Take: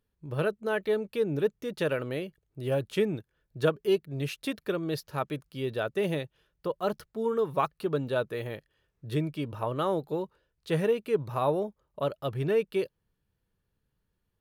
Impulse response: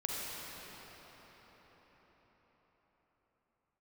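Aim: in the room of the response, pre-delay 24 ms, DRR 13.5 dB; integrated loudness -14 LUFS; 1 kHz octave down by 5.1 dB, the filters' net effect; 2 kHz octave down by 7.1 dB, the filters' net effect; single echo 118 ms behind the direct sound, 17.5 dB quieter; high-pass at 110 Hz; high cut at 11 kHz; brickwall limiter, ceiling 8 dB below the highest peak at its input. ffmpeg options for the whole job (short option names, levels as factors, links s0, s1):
-filter_complex "[0:a]highpass=110,lowpass=11000,equalizer=f=1000:t=o:g=-4.5,equalizer=f=2000:t=o:g=-8.5,alimiter=limit=0.0794:level=0:latency=1,aecho=1:1:118:0.133,asplit=2[s0][s1];[1:a]atrim=start_sample=2205,adelay=24[s2];[s1][s2]afir=irnorm=-1:irlink=0,volume=0.126[s3];[s0][s3]amix=inputs=2:normalize=0,volume=9.44"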